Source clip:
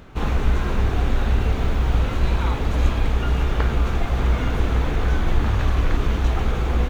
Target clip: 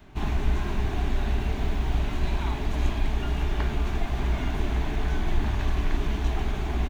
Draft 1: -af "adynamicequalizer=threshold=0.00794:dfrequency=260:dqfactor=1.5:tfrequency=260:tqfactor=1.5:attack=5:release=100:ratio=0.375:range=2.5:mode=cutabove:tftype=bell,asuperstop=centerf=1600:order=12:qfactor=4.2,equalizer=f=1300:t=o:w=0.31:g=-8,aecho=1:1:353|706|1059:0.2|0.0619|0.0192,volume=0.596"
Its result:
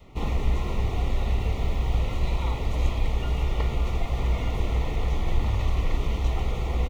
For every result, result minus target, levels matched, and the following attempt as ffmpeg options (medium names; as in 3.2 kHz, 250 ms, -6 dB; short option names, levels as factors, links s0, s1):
2 kHz band -3.5 dB; 250 Hz band -3.5 dB
-af "adynamicequalizer=threshold=0.00794:dfrequency=260:dqfactor=1.5:tfrequency=260:tqfactor=1.5:attack=5:release=100:ratio=0.375:range=2.5:mode=cutabove:tftype=bell,asuperstop=centerf=500:order=12:qfactor=4.2,equalizer=f=1300:t=o:w=0.31:g=-8,aecho=1:1:353|706|1059:0.2|0.0619|0.0192,volume=0.596"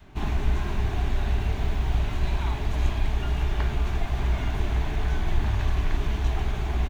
250 Hz band -3.5 dB
-af "adynamicequalizer=threshold=0.00794:dfrequency=95:dqfactor=1.5:tfrequency=95:tqfactor=1.5:attack=5:release=100:ratio=0.375:range=2.5:mode=cutabove:tftype=bell,asuperstop=centerf=500:order=12:qfactor=4.2,equalizer=f=1300:t=o:w=0.31:g=-8,aecho=1:1:353|706|1059:0.2|0.0619|0.0192,volume=0.596"